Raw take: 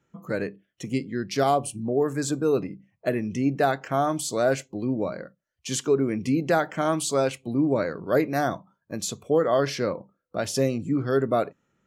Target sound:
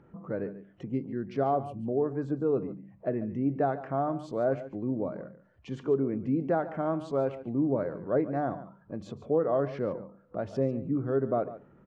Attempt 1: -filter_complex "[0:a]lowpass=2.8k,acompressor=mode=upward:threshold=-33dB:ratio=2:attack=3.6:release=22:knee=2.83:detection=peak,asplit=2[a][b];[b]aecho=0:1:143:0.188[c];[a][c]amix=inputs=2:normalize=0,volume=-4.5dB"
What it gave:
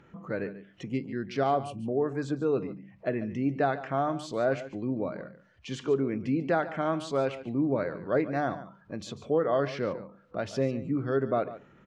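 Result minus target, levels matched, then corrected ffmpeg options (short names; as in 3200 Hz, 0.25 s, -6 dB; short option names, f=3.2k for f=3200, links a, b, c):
2000 Hz band +8.0 dB
-filter_complex "[0:a]lowpass=1k,acompressor=mode=upward:threshold=-33dB:ratio=2:attack=3.6:release=22:knee=2.83:detection=peak,asplit=2[a][b];[b]aecho=0:1:143:0.188[c];[a][c]amix=inputs=2:normalize=0,volume=-4.5dB"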